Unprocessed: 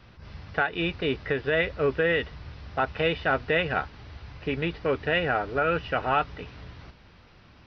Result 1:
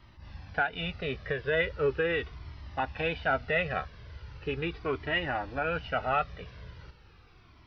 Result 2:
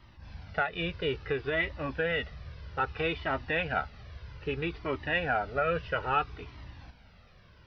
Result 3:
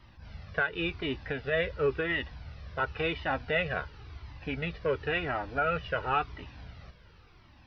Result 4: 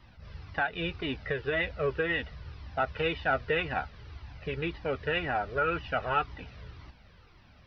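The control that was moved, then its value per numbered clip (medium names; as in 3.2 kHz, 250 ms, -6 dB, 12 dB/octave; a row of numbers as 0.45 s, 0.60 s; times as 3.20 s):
Shepard-style flanger, rate: 0.39 Hz, 0.61 Hz, 0.94 Hz, 1.9 Hz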